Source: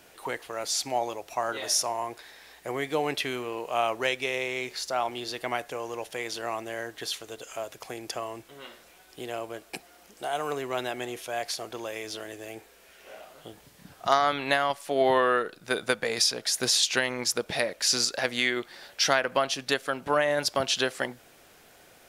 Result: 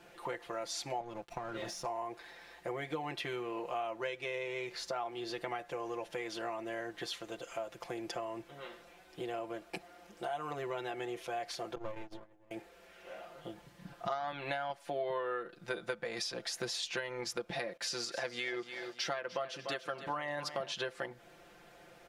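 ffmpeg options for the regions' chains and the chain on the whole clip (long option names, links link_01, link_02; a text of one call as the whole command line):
ffmpeg -i in.wav -filter_complex "[0:a]asettb=1/sr,asplit=3[link_01][link_02][link_03];[link_01]atrim=end=1.004[link_04];[link_02]atrim=start=1:end=1.85,asetpts=PTS-STARTPTS,afade=type=in:duration=0.004:curve=qsin,afade=type=out:start_time=0.846:duration=0.004:curve=qsin,bass=frequency=250:gain=13,treble=frequency=4000:gain=-1,acompressor=threshold=-30dB:ratio=6:attack=3.2:release=140:knee=1:detection=peak,aeval=exprs='sgn(val(0))*max(abs(val(0))-0.00447,0)':channel_layout=same[link_05];[link_03]atrim=start=1.846[link_06];[link_04][link_05]acrossfade=duration=0.004:curve1=hsin:curve2=qsin[link_07];[link_07][link_06]acrossfade=duration=0.004:curve1=qsin:curve2=hsin,asettb=1/sr,asplit=3[link_08][link_09][link_10];[link_08]atrim=end=11.754[link_11];[link_09]atrim=start=11.75:end=12.51,asetpts=PTS-STARTPTS,afade=type=in:duration=0.004:curve=qsin,afade=type=out:start_time=0.756:duration=0.004:curve=qsin,agate=range=-25dB:threshold=-37dB:ratio=16:release=100:detection=peak,tiltshelf=frequency=1200:gain=8,aeval=exprs='max(val(0),0)':channel_layout=same[link_12];[link_10]atrim=start=12.506[link_13];[link_11][link_12]acrossfade=duration=0.004:curve1=hsin:curve2=qsin[link_14];[link_14][link_13]acrossfade=duration=0.004:curve1=qsin:curve2=hsin,asettb=1/sr,asplit=3[link_15][link_16][link_17];[link_15]atrim=end=17.774[link_18];[link_16]atrim=start=17.77:end=20.72,asetpts=PTS-STARTPTS,afade=type=in:duration=0.004:curve=qsin,afade=type=out:start_time=2.946:duration=0.004:curve=qsin,agate=range=-33dB:threshold=-48dB:ratio=3:release=100:detection=peak,highpass=frequency=120:poles=1,aecho=1:1:295|590|885:0.2|0.0698|0.0244,atrim=end_sample=130095[link_19];[link_17]atrim=start=20.716[link_20];[link_18][link_19]acrossfade=duration=0.004:curve1=hsin:curve2=qsin[link_21];[link_21][link_20]acrossfade=duration=0.004:curve1=qsin:curve2=hsin,lowpass=frequency=2300:poles=1,aecho=1:1:5.8:0.87,acompressor=threshold=-33dB:ratio=4,volume=-3dB" out.wav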